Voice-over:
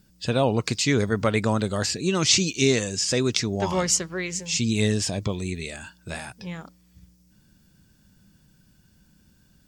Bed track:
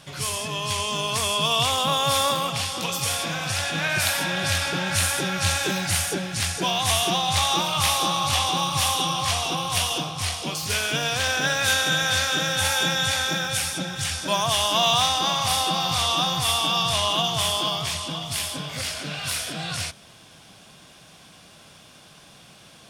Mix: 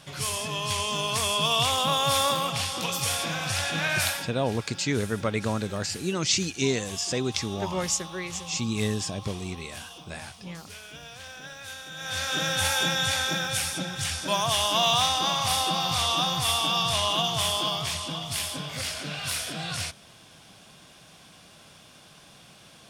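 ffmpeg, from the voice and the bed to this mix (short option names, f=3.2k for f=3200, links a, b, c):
-filter_complex "[0:a]adelay=4000,volume=-5dB[a];[1:a]volume=14.5dB,afade=t=out:st=4.01:d=0.3:silence=0.141254,afade=t=in:st=11.94:d=0.52:silence=0.149624[b];[a][b]amix=inputs=2:normalize=0"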